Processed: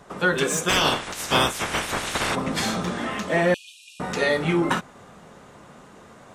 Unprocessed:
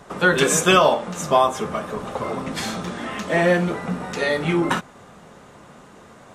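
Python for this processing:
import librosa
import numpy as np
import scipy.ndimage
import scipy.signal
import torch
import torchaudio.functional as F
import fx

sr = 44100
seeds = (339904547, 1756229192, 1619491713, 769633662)

p1 = fx.spec_clip(x, sr, under_db=27, at=(0.68, 2.34), fade=0.02)
p2 = np.clip(p1, -10.0 ** (-10.5 / 20.0), 10.0 ** (-10.5 / 20.0))
p3 = p1 + (p2 * 10.0 ** (-11.0 / 20.0))
p4 = fx.rider(p3, sr, range_db=4, speed_s=0.5)
p5 = fx.brickwall_highpass(p4, sr, low_hz=2400.0, at=(3.54, 4.0))
p6 = fx.slew_limit(p5, sr, full_power_hz=960.0)
y = p6 * 10.0 ** (-4.0 / 20.0)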